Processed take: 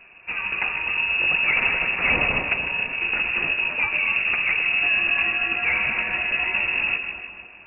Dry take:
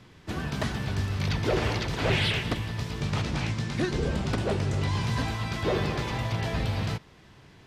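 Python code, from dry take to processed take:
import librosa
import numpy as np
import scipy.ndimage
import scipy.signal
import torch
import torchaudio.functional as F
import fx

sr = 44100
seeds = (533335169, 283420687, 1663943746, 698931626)

y = fx.echo_split(x, sr, split_hz=1400.0, low_ms=154, high_ms=247, feedback_pct=52, wet_db=-8.0)
y = fx.freq_invert(y, sr, carrier_hz=2700)
y = y * 10.0 ** (3.5 / 20.0)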